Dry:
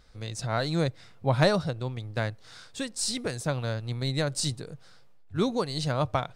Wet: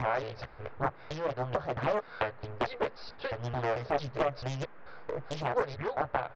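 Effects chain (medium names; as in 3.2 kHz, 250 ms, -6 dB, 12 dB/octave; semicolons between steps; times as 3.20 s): slices played last to first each 221 ms, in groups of 3; compression 12:1, threshold -33 dBFS, peak gain reduction 16.5 dB; doubling 14 ms -5 dB; resampled via 11.025 kHz; FFT filter 120 Hz 0 dB, 260 Hz -24 dB, 430 Hz +8 dB, 2.2 kHz +8 dB, 3.1 kHz -3 dB; gain riding within 4 dB 2 s; treble shelf 2.8 kHz -8.5 dB; band-stop 1.9 kHz, Q 6.4; band noise 120–1700 Hz -59 dBFS; loudspeaker Doppler distortion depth 1 ms; trim +2 dB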